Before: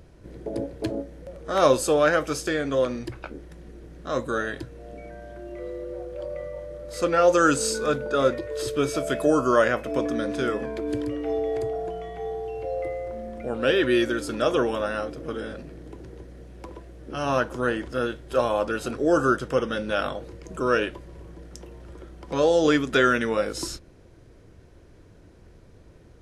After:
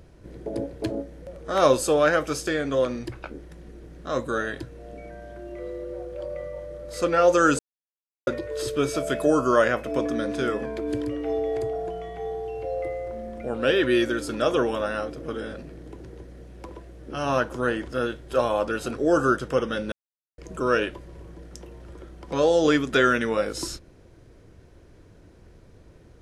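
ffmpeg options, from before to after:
-filter_complex "[0:a]asplit=5[a][b][c][d][e];[a]atrim=end=7.59,asetpts=PTS-STARTPTS,afade=t=out:st=7.586:d=0.004:c=hsin[f];[b]atrim=start=7.59:end=8.27,asetpts=PTS-STARTPTS,volume=0[g];[c]atrim=start=8.27:end=19.92,asetpts=PTS-STARTPTS,afade=t=in:d=0.004:c=hsin,afade=t=out:st=11.646:d=0.004:c=hsin[h];[d]atrim=start=19.92:end=20.38,asetpts=PTS-STARTPTS,volume=0[i];[e]atrim=start=20.38,asetpts=PTS-STARTPTS,afade=t=in:d=0.004:c=hsin[j];[f][g][h][i][j]concat=n=5:v=0:a=1"

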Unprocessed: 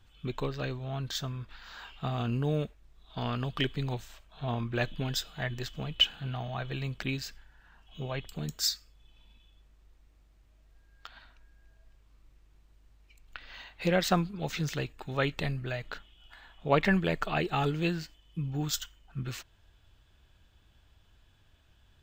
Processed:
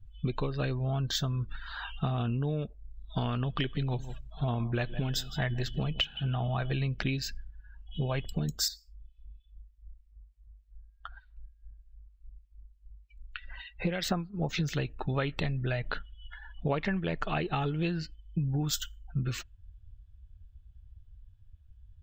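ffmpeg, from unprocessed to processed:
-filter_complex "[0:a]asettb=1/sr,asplit=3[a][b][c];[a]atrim=end=3.454[d];[b]atrim=start=3.45:end=6.71,asetpts=PTS-STARTPTS,afade=t=in:d=0.004:c=qsin,afade=t=out:st=3.256:d=0.004:c=qsin,aecho=1:1:160|320:0.133|0.0227,atrim=end_sample=143766[e];[c]atrim=start=6.706[f];[d][e]acrossfade=d=0.004:c1=hsin:c2=qsin[g];[g][f]acrossfade=d=0.004:c1=qsin:c2=hsin,asettb=1/sr,asplit=3[h][i][j];[h]atrim=end=8.684[k];[i]atrim=start=8.68:end=14.58,asetpts=PTS-STARTPTS,afade=t=in:d=0.004:c=qsin,afade=t=out:st=5.896:d=0.004:c=qsin,acrossover=split=1800[l][m];[l]aeval=exprs='val(0)*(1-0.7/2+0.7/2*cos(2*PI*3.3*n/s))':c=same[n];[m]aeval=exprs='val(0)*(1-0.7/2-0.7/2*cos(2*PI*3.3*n/s))':c=same[o];[n][o]amix=inputs=2:normalize=0[p];[j]atrim=start=14.576[q];[k][p]acrossfade=d=0.004:c1=hsin:c2=qsin[r];[r][q]acrossfade=d=0.004:c1=qsin:c2=hsin,afftdn=nr=27:nf=-49,lowshelf=f=190:g=5,acompressor=threshold=-35dB:ratio=12,volume=8dB"

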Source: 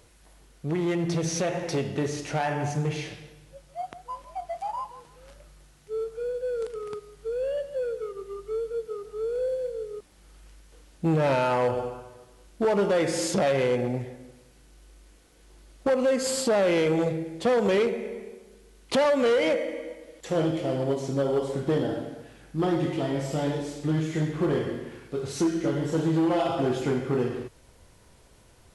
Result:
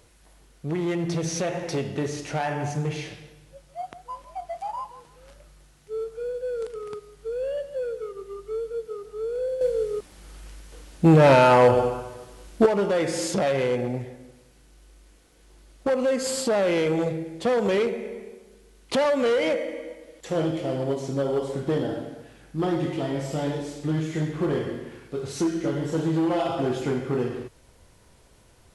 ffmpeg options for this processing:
-filter_complex "[0:a]asplit=3[a][b][c];[a]atrim=end=9.612[d];[b]atrim=start=9.608:end=12.662,asetpts=PTS-STARTPTS,volume=8.5dB[e];[c]atrim=start=12.658[f];[d][e]acrossfade=d=0.004:c1=hsin:c2=hsin[g];[g][f]acrossfade=d=0.004:c1=hsin:c2=hsin"

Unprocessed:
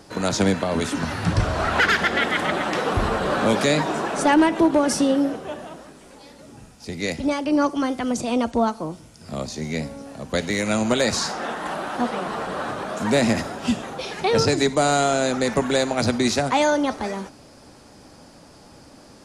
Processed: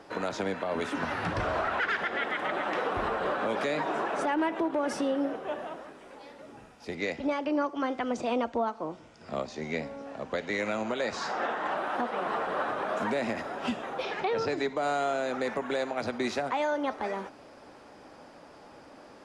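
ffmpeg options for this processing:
-filter_complex "[0:a]asettb=1/sr,asplit=3[a][b][c];[a]atrim=end=6.954[d];[b]atrim=start=6.95:end=11.77,asetpts=PTS-STARTPTS,afade=t=in:d=0.004:c=qsin,afade=t=out:st=4.816:d=0.004:c=qsin,lowpass=f=8.2k:w=0.5412,lowpass=f=8.2k:w=1.3066[e];[c]atrim=start=11.766[f];[d][e]acrossfade=d=0.004:c1=hsin:c2=qsin[g];[g][f]acrossfade=d=0.004:c1=qsin:c2=hsin,asettb=1/sr,asplit=3[h][i][j];[h]atrim=end=14.034[k];[i]atrim=start=14.03:end=14.83,asetpts=PTS-STARTPTS,afade=t=in:d=0.004:c=qsin,afade=t=out:st=0.796:d=0.004:c=qsin,lowpass=6.6k[l];[j]atrim=start=14.826[m];[k][l]acrossfade=d=0.004:c1=hsin:c2=qsin[n];[n][m]acrossfade=d=0.004:c1=qsin:c2=hsin,bass=f=250:g=-13,treble=f=4k:g=-15,bandreject=f=4.3k:w=28,alimiter=limit=-20.5dB:level=0:latency=1:release=358"

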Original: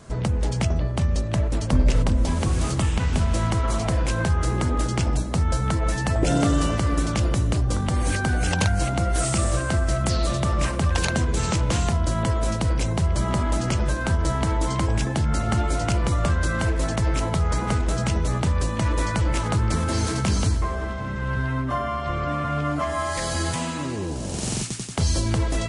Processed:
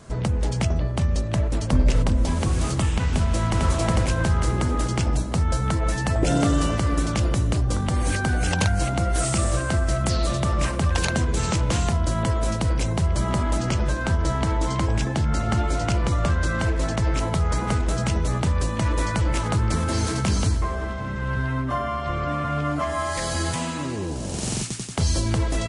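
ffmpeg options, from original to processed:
-filter_complex "[0:a]asplit=2[a][b];[b]afade=t=in:st=3.08:d=0.01,afade=t=out:st=3.6:d=0.01,aecho=0:1:450|900|1350|1800|2250|2700:0.891251|0.401063|0.180478|0.0812152|0.0365469|0.0164461[c];[a][c]amix=inputs=2:normalize=0,asettb=1/sr,asplit=3[d][e][f];[d]atrim=end=13.584[g];[e]atrim=start=13.58:end=17.2,asetpts=PTS-STARTPTS,afade=t=in:d=0.004:c=qsin,afade=t=out:st=3.616:d=0.004:c=qsin,lowpass=8.5k[h];[f]atrim=start=17.196[i];[g][h]acrossfade=d=0.004:c1=hsin:c2=qsin[j];[j][i]acrossfade=d=0.004:c1=qsin:c2=hsin"

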